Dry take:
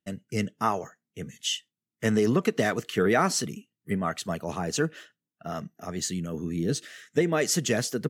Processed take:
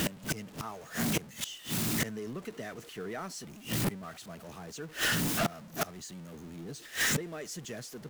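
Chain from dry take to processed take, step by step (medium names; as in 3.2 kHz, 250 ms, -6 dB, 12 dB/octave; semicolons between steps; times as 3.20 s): jump at every zero crossing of -28 dBFS; inverted gate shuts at -28 dBFS, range -24 dB; trim +6 dB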